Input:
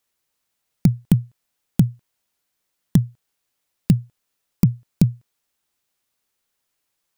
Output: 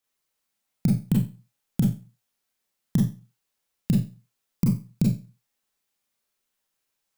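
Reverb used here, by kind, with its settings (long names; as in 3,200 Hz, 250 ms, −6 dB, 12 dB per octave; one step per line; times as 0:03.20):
four-comb reverb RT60 0.31 s, combs from 29 ms, DRR −3 dB
level −8 dB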